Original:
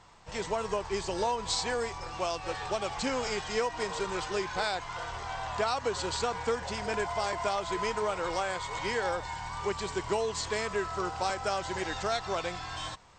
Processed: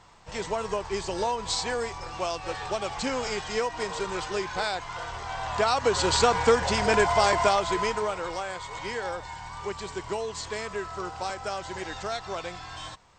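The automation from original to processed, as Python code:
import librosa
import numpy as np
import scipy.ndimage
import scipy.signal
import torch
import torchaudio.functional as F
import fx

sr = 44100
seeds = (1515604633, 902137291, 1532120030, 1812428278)

y = fx.gain(x, sr, db=fx.line((5.24, 2.0), (6.18, 10.0), (7.36, 10.0), (8.37, -1.5)))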